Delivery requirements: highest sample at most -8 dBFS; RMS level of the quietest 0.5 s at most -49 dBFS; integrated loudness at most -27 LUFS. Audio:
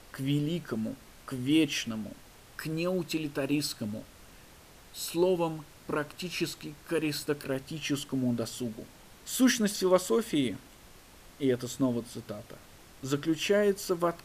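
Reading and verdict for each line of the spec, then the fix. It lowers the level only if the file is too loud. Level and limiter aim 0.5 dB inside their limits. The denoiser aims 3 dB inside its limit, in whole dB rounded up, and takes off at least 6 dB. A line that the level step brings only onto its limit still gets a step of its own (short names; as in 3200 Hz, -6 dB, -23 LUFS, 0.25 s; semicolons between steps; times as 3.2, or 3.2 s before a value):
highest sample -12.0 dBFS: OK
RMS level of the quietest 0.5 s -54 dBFS: OK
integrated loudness -30.5 LUFS: OK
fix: none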